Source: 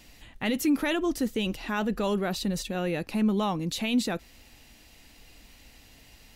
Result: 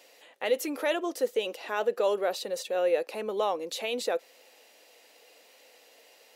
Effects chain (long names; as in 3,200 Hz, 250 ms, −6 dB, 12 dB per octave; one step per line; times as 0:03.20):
four-pole ladder high-pass 450 Hz, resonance 65%
level +8.5 dB